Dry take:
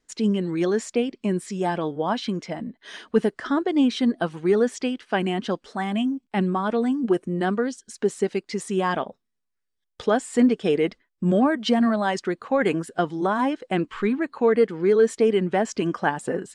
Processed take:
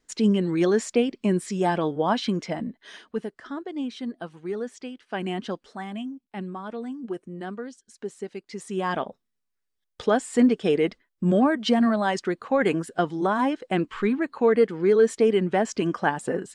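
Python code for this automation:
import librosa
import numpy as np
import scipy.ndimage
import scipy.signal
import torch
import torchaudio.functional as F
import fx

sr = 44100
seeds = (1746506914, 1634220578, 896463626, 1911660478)

y = fx.gain(x, sr, db=fx.line((2.66, 1.5), (3.22, -11.0), (4.99, -11.0), (5.32, -3.5), (6.2, -11.0), (8.33, -11.0), (9.06, -0.5)))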